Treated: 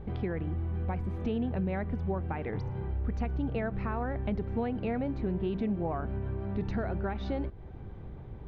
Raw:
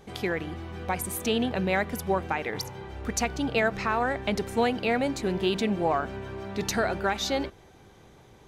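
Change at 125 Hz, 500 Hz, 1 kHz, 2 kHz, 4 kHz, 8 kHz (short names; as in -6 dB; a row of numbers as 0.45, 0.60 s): +3.5 dB, -7.5 dB, -10.0 dB, -14.0 dB, -20.5 dB, under -35 dB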